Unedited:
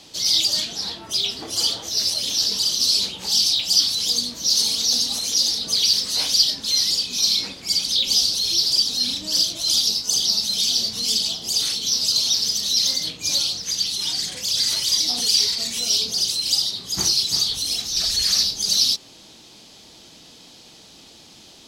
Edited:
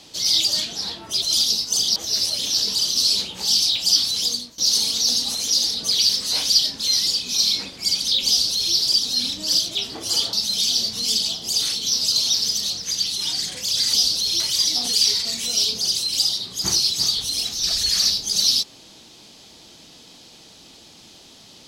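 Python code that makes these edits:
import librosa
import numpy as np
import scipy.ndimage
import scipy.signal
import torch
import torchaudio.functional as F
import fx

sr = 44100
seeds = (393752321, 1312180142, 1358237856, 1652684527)

y = fx.edit(x, sr, fx.swap(start_s=1.22, length_s=0.58, other_s=9.59, other_length_s=0.74),
    fx.fade_out_to(start_s=4.07, length_s=0.35, floor_db=-19.5),
    fx.duplicate(start_s=8.11, length_s=0.47, to_s=14.73),
    fx.cut(start_s=12.7, length_s=0.8), tone=tone)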